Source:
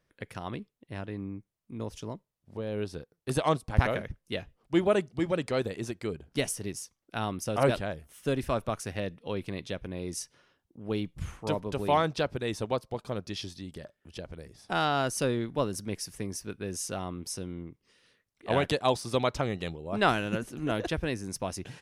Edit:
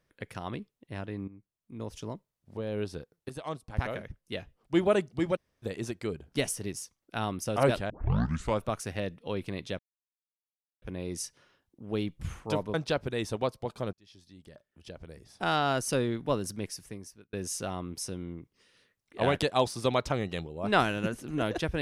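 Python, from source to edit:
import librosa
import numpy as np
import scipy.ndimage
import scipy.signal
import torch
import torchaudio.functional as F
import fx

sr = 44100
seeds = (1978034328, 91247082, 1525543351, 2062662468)

y = fx.edit(x, sr, fx.fade_in_from(start_s=1.28, length_s=0.76, floor_db=-14.0),
    fx.fade_in_from(start_s=3.29, length_s=1.55, floor_db=-15.0),
    fx.room_tone_fill(start_s=5.36, length_s=0.27, crossfade_s=0.02),
    fx.tape_start(start_s=7.9, length_s=0.71),
    fx.insert_silence(at_s=9.79, length_s=1.03),
    fx.cut(start_s=11.71, length_s=0.32),
    fx.fade_in_span(start_s=13.22, length_s=1.6),
    fx.fade_out_span(start_s=15.79, length_s=0.83), tone=tone)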